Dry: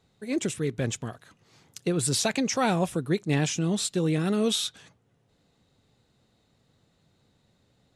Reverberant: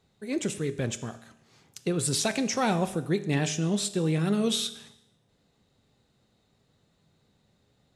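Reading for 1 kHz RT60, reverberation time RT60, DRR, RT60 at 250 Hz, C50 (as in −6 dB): 0.85 s, 0.85 s, 10.5 dB, 0.85 s, 14.0 dB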